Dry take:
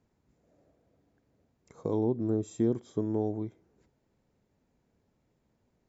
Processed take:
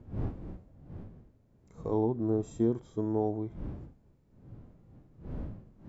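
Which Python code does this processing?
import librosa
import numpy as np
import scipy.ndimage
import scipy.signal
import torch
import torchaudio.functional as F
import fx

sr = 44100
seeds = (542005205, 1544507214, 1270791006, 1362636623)

y = fx.dmg_wind(x, sr, seeds[0], corner_hz=180.0, level_db=-40.0)
y = fx.hpss(y, sr, part='percussive', gain_db=-10)
y = fx.dynamic_eq(y, sr, hz=970.0, q=1.0, threshold_db=-49.0, ratio=4.0, max_db=7)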